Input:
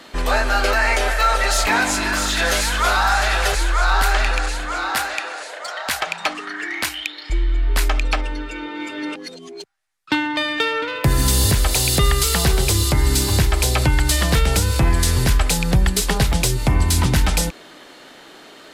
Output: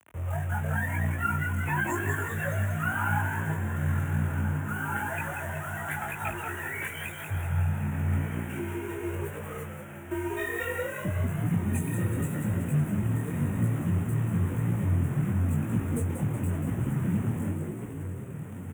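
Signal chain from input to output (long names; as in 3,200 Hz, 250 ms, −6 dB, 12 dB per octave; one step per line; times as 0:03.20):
expanding power law on the bin magnitudes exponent 2.7
parametric band 11,000 Hz +10 dB 1.1 octaves
in parallel at +2.5 dB: downward compressor 8 to 1, threshold −29 dBFS, peak gain reduction 16.5 dB
on the sum: tube saturation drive 10 dB, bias 0.55
bit reduction 5 bits
on a send: echo with shifted repeats 186 ms, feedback 55%, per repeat +59 Hz, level −6 dB
on the sum: frequency shifter +47 Hz
Butterworth band-reject 4,600 Hz, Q 0.87
feedback delay with all-pass diffusion 1,531 ms, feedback 60%, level −11 dB
micro pitch shift up and down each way 33 cents
level −7.5 dB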